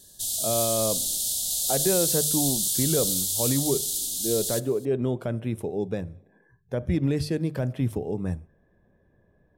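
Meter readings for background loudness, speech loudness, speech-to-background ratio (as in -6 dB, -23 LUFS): -24.0 LUFS, -28.5 LUFS, -4.5 dB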